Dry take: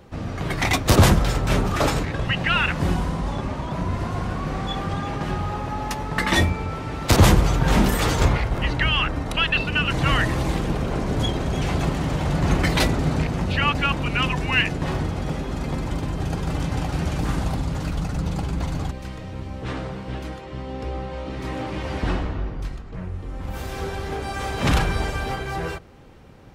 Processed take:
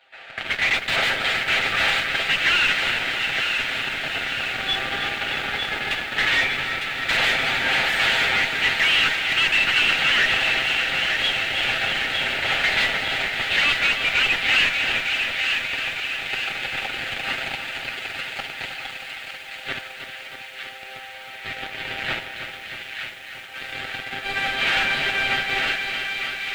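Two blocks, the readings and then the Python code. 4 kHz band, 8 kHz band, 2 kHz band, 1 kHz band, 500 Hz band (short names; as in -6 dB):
+7.5 dB, -3.5 dB, +8.0 dB, -2.5 dB, -6.5 dB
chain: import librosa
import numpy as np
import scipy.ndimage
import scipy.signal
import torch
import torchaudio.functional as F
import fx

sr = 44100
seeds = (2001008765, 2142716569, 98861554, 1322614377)

p1 = fx.lower_of_two(x, sr, delay_ms=7.6)
p2 = scipy.signal.sosfilt(scipy.signal.butter(4, 850.0, 'highpass', fs=sr, output='sos'), p1)
p3 = fx.high_shelf(p2, sr, hz=6100.0, db=7.5)
p4 = fx.fuzz(p3, sr, gain_db=33.0, gate_db=-31.0)
p5 = p3 + (p4 * librosa.db_to_amplitude(-3.5))
p6 = fx.fixed_phaser(p5, sr, hz=2500.0, stages=4)
p7 = fx.mod_noise(p6, sr, seeds[0], snr_db=12)
p8 = 10.0 ** (-21.5 / 20.0) * np.tanh(p7 / 10.0 ** (-21.5 / 20.0))
p9 = fx.air_absorb(p8, sr, metres=170.0)
p10 = p9 + fx.echo_wet_highpass(p9, sr, ms=904, feedback_pct=55, hz=1500.0, wet_db=-5.0, dry=0)
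p11 = fx.echo_crushed(p10, sr, ms=316, feedback_pct=80, bits=9, wet_db=-9.0)
y = p11 * librosa.db_to_amplitude(7.5)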